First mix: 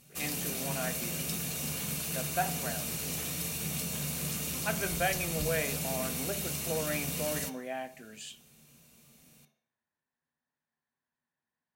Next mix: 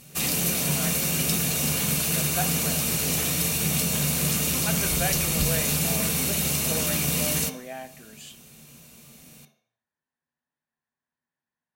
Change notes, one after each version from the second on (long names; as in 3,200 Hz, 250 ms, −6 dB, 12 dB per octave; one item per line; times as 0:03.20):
background +10.5 dB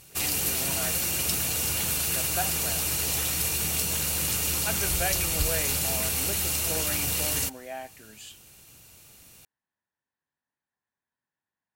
reverb: off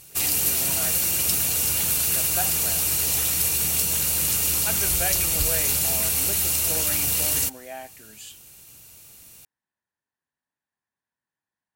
master: add high-shelf EQ 6,100 Hz +7 dB